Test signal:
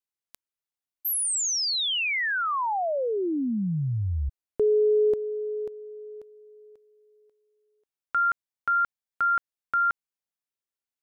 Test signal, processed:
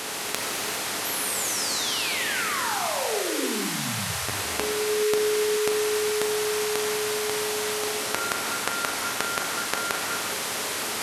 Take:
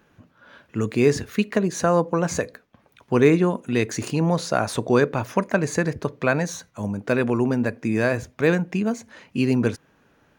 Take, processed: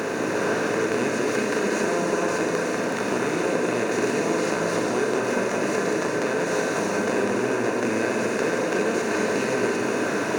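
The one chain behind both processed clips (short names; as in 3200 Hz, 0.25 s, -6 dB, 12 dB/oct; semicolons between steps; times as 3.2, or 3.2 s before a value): per-bin compression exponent 0.2; HPF 130 Hz 12 dB/oct; bell 170 Hz -5 dB 0.65 oct; compressor, threshold -15 dBFS; on a send: flutter echo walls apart 7 m, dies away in 0.21 s; on the sum: non-linear reverb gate 0.45 s flat, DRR -2 dB; gain -9 dB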